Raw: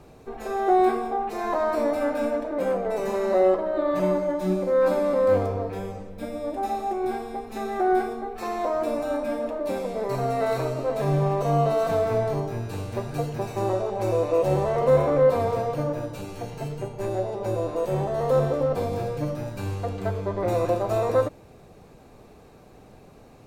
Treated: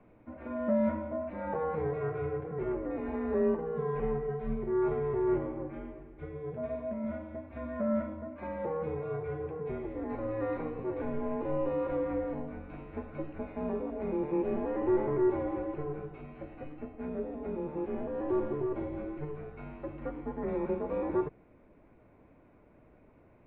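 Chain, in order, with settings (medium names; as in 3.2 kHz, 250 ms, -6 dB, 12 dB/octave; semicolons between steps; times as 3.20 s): mistuned SSB -150 Hz 160–2700 Hz; trim -8.5 dB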